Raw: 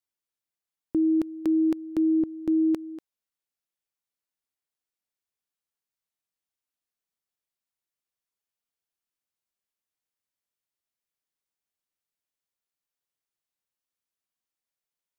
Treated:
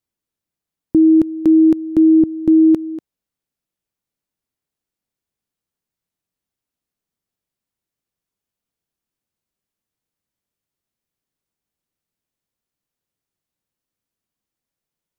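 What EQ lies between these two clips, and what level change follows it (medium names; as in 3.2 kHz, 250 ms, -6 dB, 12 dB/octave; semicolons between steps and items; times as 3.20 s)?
peaking EQ 180 Hz +4 dB 2.6 oct; bass shelf 420 Hz +9.5 dB; +3.0 dB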